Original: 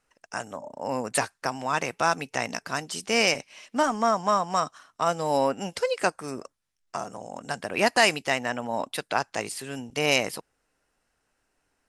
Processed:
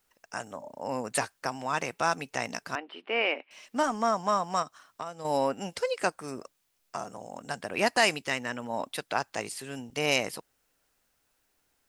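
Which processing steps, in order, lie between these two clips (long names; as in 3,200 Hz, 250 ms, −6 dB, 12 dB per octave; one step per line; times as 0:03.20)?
bit-depth reduction 12 bits, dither triangular
0:02.75–0:03.51: elliptic band-pass filter 290–2,900 Hz, stop band 40 dB
0:04.62–0:05.25: downward compressor 8 to 1, threshold −31 dBFS, peak gain reduction 13 dB
0:08.24–0:08.70: parametric band 720 Hz −9 dB 0.44 octaves
level −3.5 dB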